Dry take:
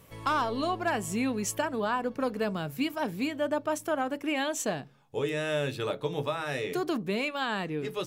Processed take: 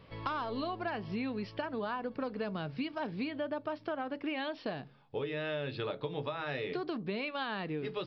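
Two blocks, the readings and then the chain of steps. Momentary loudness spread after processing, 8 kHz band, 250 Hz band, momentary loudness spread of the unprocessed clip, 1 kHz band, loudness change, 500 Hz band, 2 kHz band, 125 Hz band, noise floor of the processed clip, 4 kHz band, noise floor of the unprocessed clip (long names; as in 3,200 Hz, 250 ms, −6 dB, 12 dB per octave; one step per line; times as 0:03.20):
2 LU, below −35 dB, −6.0 dB, 3 LU, −7.0 dB, −6.5 dB, −6.0 dB, −6.5 dB, −5.0 dB, −57 dBFS, −6.0 dB, −52 dBFS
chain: downward compressor, threshold −33 dBFS, peak gain reduction 9 dB
downsampling to 11,025 Hz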